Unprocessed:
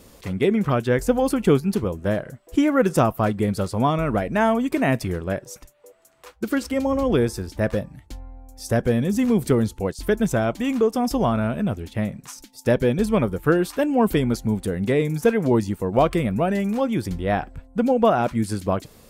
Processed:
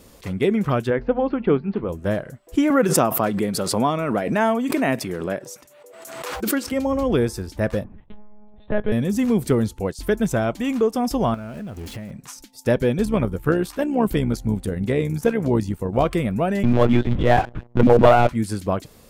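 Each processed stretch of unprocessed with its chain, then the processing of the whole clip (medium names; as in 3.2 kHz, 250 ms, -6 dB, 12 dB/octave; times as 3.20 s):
0.90–1.89 s: Bessel low-pass 2 kHz, order 8 + peaking EQ 83 Hz -9 dB 1.6 oct + hum notches 60/120/180/240 Hz
2.70–6.72 s: high-pass 180 Hz + swell ahead of each attack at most 42 dB/s
7.84–8.92 s: monotone LPC vocoder at 8 kHz 210 Hz + tape noise reduction on one side only decoder only
11.34–12.11 s: jump at every zero crossing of -34 dBFS + band-stop 3.6 kHz, Q 14 + compression 10:1, threshold -29 dBFS
13.05–16.05 s: bass shelf 120 Hz +7.5 dB + AM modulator 66 Hz, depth 35%
16.63–18.29 s: monotone LPC vocoder at 8 kHz 120 Hz + waveshaping leveller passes 2
whole clip: none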